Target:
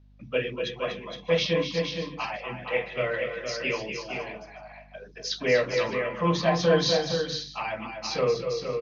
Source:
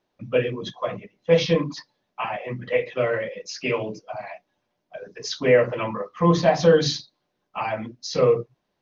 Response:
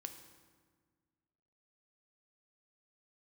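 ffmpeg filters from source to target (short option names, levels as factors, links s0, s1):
-af "highpass=130,lowpass=4600,highshelf=f=2100:g=12,aeval=exprs='val(0)+0.00355*(sin(2*PI*50*n/s)+sin(2*PI*2*50*n/s)/2+sin(2*PI*3*50*n/s)/3+sin(2*PI*4*50*n/s)/4+sin(2*PI*5*50*n/s)/5)':c=same,lowshelf=f=170:g=3,aecho=1:1:240|246|268|465|512|615:0.237|0.316|0.141|0.473|0.112|0.106,volume=0.422"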